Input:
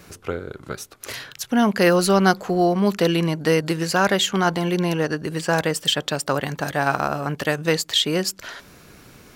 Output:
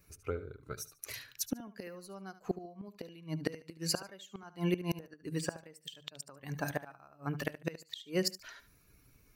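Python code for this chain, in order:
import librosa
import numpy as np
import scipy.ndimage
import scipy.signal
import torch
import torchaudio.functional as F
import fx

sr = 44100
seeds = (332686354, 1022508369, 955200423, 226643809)

y = fx.bin_expand(x, sr, power=1.5)
y = fx.high_shelf(y, sr, hz=10000.0, db=4.5)
y = fx.hum_notches(y, sr, base_hz=50, count=3)
y = fx.gate_flip(y, sr, shuts_db=-16.0, range_db=-26)
y = fx.echo_feedback(y, sr, ms=73, feedback_pct=23, wet_db=-14.5)
y = y * 10.0 ** (-3.5 / 20.0)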